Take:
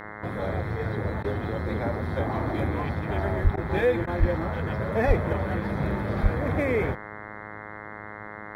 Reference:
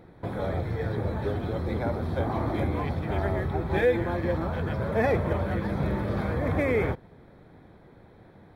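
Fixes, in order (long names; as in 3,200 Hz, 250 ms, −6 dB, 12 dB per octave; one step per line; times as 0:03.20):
hum removal 105.5 Hz, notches 20
high-pass at the plosives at 0:03.43/0:04.19/0:05.07/0:06.22
repair the gap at 0:01.23/0:03.56/0:04.06, 11 ms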